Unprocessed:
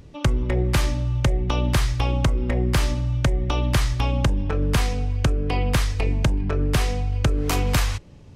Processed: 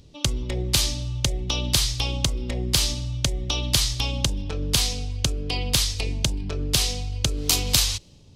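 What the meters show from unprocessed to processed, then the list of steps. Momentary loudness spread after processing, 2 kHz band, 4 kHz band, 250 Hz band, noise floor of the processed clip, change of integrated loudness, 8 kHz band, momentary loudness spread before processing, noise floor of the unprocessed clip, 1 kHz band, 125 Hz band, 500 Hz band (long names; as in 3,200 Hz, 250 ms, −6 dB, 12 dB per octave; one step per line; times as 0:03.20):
6 LU, −3.0 dB, +9.0 dB, −5.5 dB, −49 dBFS, −0.5 dB, +10.0 dB, 2 LU, −43 dBFS, −7.0 dB, −5.5 dB, −6.0 dB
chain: high shelf with overshoot 2,600 Hz +14 dB, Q 1.5
one half of a high-frequency compander decoder only
level −5.5 dB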